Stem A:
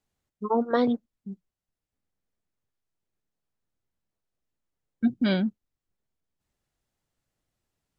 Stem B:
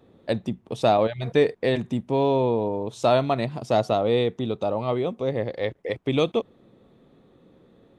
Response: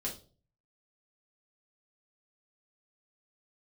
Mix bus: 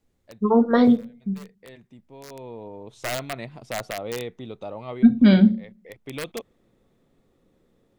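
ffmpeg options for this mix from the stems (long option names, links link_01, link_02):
-filter_complex "[0:a]lowshelf=frequency=230:gain=9.5,volume=0.5dB,asplit=3[link_01][link_02][link_03];[link_02]volume=-6.5dB[link_04];[1:a]adynamicequalizer=threshold=0.0141:dfrequency=2000:dqfactor=0.98:tfrequency=2000:tqfactor=0.98:attack=5:release=100:ratio=0.375:range=2:mode=boostabove:tftype=bell,aeval=exprs='(mod(3.76*val(0)+1,2)-1)/3.76':channel_layout=same,volume=-10dB,afade=type=in:start_time=2.27:duration=0.69:silence=0.237137[link_05];[link_03]apad=whole_len=352076[link_06];[link_05][link_06]sidechaincompress=threshold=-32dB:ratio=4:attack=7.9:release=758[link_07];[2:a]atrim=start_sample=2205[link_08];[link_04][link_08]afir=irnorm=-1:irlink=0[link_09];[link_01][link_07][link_09]amix=inputs=3:normalize=0,equalizer=frequency=2100:width=3.6:gain=3"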